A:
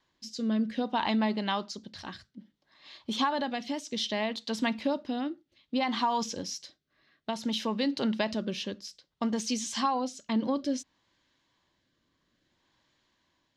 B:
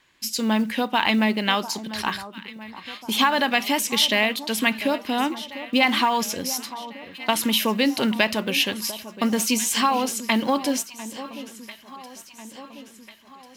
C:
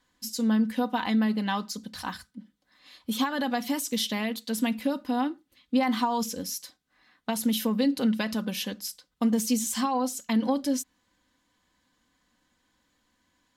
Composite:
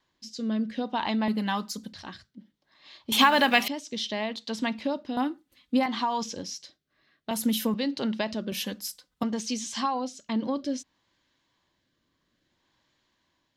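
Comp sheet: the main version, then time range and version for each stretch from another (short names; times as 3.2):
A
1.28–1.93 from C
3.12–3.68 from B
5.17–5.86 from C
7.31–7.74 from C
8.52–9.23 from C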